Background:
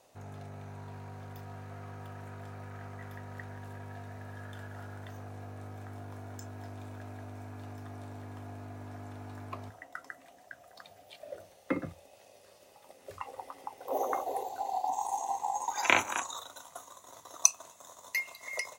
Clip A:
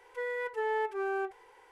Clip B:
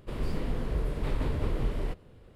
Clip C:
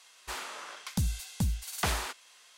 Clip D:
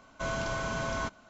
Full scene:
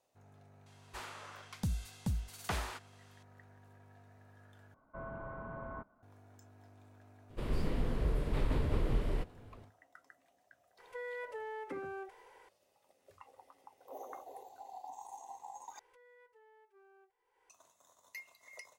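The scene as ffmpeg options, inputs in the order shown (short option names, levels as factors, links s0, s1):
-filter_complex "[1:a]asplit=2[s0][s1];[0:a]volume=0.168[s2];[3:a]highshelf=f=2800:g=-7[s3];[4:a]lowpass=f=1400:w=0.5412,lowpass=f=1400:w=1.3066[s4];[s0]acompressor=threshold=0.0141:ratio=6:attack=3.2:release=140:knee=1:detection=peak[s5];[s1]acompressor=threshold=0.00501:ratio=16:attack=0.14:release=373:knee=1:detection=rms[s6];[s2]asplit=3[s7][s8][s9];[s7]atrim=end=4.744[s10];[s4]atrim=end=1.29,asetpts=PTS-STARTPTS,volume=0.282[s11];[s8]atrim=start=6.026:end=15.794[s12];[s6]atrim=end=1.71,asetpts=PTS-STARTPTS,volume=0.266[s13];[s9]atrim=start=17.496[s14];[s3]atrim=end=2.57,asetpts=PTS-STARTPTS,volume=0.531,afade=t=in:d=0.004:c=hsin,afade=t=out:st=2.566:d=0.004:c=hsin,adelay=660[s15];[2:a]atrim=end=2.35,asetpts=PTS-STARTPTS,volume=0.75,afade=t=in:d=0.004:c=hsin,afade=t=out:st=2.346:d=0.004:c=hsin,adelay=321930S[s16];[s5]atrim=end=1.71,asetpts=PTS-STARTPTS,volume=0.794,afade=t=in:d=0.004:c=hsin,afade=t=out:st=1.706:d=0.004:c=hsin,adelay=10780[s17];[s10][s11]acrossfade=d=0.004:c1=hsin:c2=hsin[s18];[s18][s12]acrossfade=d=0.004:c1=hsin:c2=hsin[s19];[s19][s13]acrossfade=d=0.004:c1=hsin:c2=hsin[s20];[s20][s14]acrossfade=d=0.004:c1=hsin:c2=hsin[s21];[s21][s15][s16][s17]amix=inputs=4:normalize=0"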